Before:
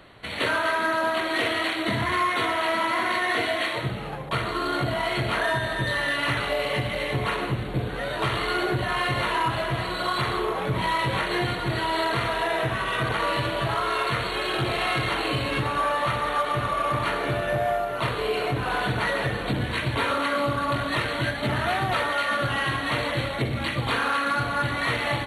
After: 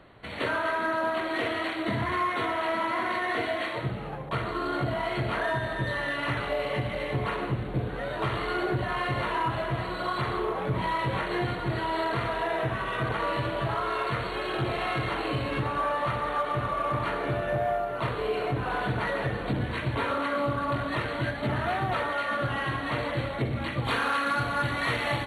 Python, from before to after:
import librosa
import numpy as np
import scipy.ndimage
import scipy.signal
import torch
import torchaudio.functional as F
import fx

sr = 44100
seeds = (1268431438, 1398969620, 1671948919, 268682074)

y = fx.high_shelf(x, sr, hz=2700.0, db=fx.steps((0.0, -11.0), (23.84, -2.0)))
y = F.gain(torch.from_numpy(y), -2.0).numpy()